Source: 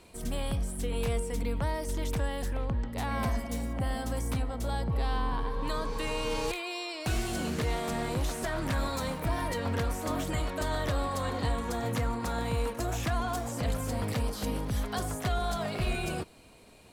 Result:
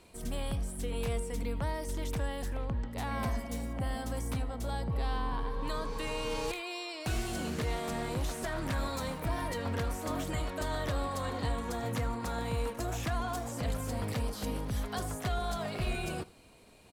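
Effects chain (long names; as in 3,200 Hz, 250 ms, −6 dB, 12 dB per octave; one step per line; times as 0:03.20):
single-tap delay 79 ms −21 dB
level −3 dB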